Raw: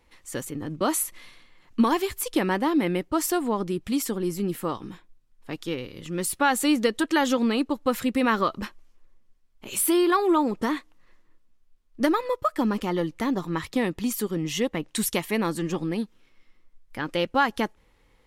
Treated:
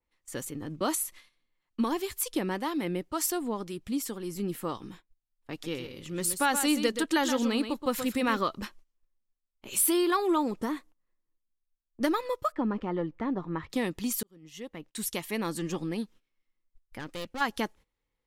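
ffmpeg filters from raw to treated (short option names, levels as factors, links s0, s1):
-filter_complex "[0:a]asettb=1/sr,asplit=3[s0][s1][s2];[s0]atrim=end=0.954[s3];[s1]atrim=start=0.95:end=4.36,asetpts=PTS-STARTPTS,afade=t=in:d=0.004:c=qsin,afade=t=out:st=3.406:d=0.004:c=qsin,acrossover=split=620[s4][s5];[s4]aeval=exprs='val(0)*(1-0.5/2+0.5/2*cos(2*PI*2*n/s))':c=same[s6];[s5]aeval=exprs='val(0)*(1-0.5/2-0.5/2*cos(2*PI*2*n/s))':c=same[s7];[s6][s7]amix=inputs=2:normalize=0[s8];[s2]atrim=start=4.356[s9];[s3][s8]acrossfade=d=0.004:c1=hsin:c2=qsin[s10];[s10][s9]acrossfade=d=0.004:c1=qsin:c2=hsin,asettb=1/sr,asplit=3[s11][s12][s13];[s11]atrim=end=5.514[s14];[s12]atrim=start=5.51:end=8.37,asetpts=PTS-STARTPTS,afade=t=in:d=0.004:c=qsin,afade=t=out:st=2.856:d=0.004:c=qsin,aecho=1:1:125:0.355,atrim=end_sample=126126[s15];[s13]atrim=start=8.366[s16];[s14][s15]acrossfade=d=0.004:c1=hsin:c2=qsin[s17];[s17][s16]acrossfade=d=0.004:c1=qsin:c2=hsin,asettb=1/sr,asplit=3[s18][s19][s20];[s18]atrim=end=10.624[s21];[s19]atrim=start=10.62:end=12.01,asetpts=PTS-STARTPTS,afade=t=in:d=0.004:c=qsin,afade=t=out:st=1.386:d=0.004:c=qsin,equalizer=f=3600:t=o:w=2.5:g=-8[s22];[s20]atrim=start=12.006[s23];[s21][s22]acrossfade=d=0.004:c1=hsin:c2=qsin[s24];[s24][s23]acrossfade=d=0.004:c1=qsin:c2=hsin,asettb=1/sr,asplit=3[s25][s26][s27];[s25]atrim=end=12.524[s28];[s26]atrim=start=12.52:end=13.7,asetpts=PTS-STARTPTS,afade=t=in:d=0.004:c=qsin,afade=t=out:st=1.176:d=0.004:c=qsin,lowpass=1600[s29];[s27]atrim=start=13.696[s30];[s28][s29]acrossfade=d=0.004:c1=hsin:c2=qsin[s31];[s31][s30]acrossfade=d=0.004:c1=qsin:c2=hsin,asplit=3[s32][s33][s34];[s32]afade=t=out:st=16.98:d=0.02[s35];[s33]aeval=exprs='(tanh(28.2*val(0)+0.7)-tanh(0.7))/28.2':c=same,afade=t=in:st=16.98:d=0.02,afade=t=out:st=17.4:d=0.02[s36];[s34]afade=t=in:st=17.4:d=0.02[s37];[s35][s36][s37]amix=inputs=3:normalize=0,asplit=2[s38][s39];[s38]atrim=end=14.23,asetpts=PTS-STARTPTS,afade=t=out:st=14.226:d=0.004:c=hsin[s40];[s39]atrim=start=14.23,asetpts=PTS-STARTPTS,afade=t=in:d=1.41[s41];[s40][s41]concat=n=2:v=0:a=1,agate=range=0.141:threshold=0.00562:ratio=16:detection=peak,adynamicequalizer=threshold=0.00891:dfrequency=3100:dqfactor=0.7:tfrequency=3100:tqfactor=0.7:attack=5:release=100:ratio=0.375:range=2.5:mode=boostabove:tftype=highshelf,volume=0.562"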